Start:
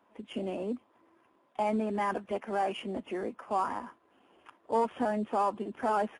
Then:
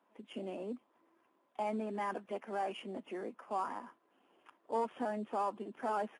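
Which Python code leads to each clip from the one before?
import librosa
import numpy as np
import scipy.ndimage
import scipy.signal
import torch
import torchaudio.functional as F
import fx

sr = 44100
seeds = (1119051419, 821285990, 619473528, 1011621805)

y = scipy.signal.sosfilt(scipy.signal.butter(2, 170.0, 'highpass', fs=sr, output='sos'), x)
y = y * 10.0 ** (-6.5 / 20.0)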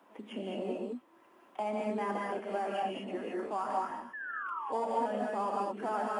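y = fx.spec_paint(x, sr, seeds[0], shape='fall', start_s=4.13, length_s=1.04, low_hz=410.0, high_hz=1800.0, level_db=-45.0)
y = fx.rev_gated(y, sr, seeds[1], gate_ms=240, shape='rising', drr_db=-2.5)
y = fx.band_squash(y, sr, depth_pct=40)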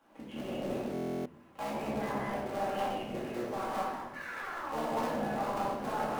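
y = fx.cycle_switch(x, sr, every=3, mode='muted')
y = fx.room_shoebox(y, sr, seeds[2], volume_m3=320.0, walls='mixed', distance_m=2.3)
y = fx.buffer_glitch(y, sr, at_s=(0.93,), block=1024, repeats=13)
y = y * 10.0 ** (-6.0 / 20.0)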